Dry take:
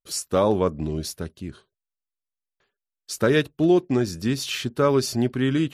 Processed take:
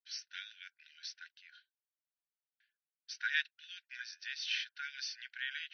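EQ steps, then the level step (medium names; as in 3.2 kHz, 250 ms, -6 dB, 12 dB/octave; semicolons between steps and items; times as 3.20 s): brick-wall FIR band-pass 1.4–6.2 kHz; distance through air 150 m; -3.5 dB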